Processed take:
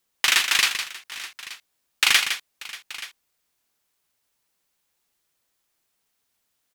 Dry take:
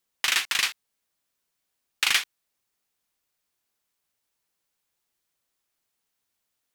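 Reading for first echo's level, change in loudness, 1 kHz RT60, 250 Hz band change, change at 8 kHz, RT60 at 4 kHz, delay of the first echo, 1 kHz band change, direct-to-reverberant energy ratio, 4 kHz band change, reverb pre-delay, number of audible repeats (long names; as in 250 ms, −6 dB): −8.5 dB, +4.0 dB, no reverb audible, +5.0 dB, +5.0 dB, no reverb audible, 160 ms, +5.0 dB, no reverb audible, +5.0 dB, no reverb audible, 3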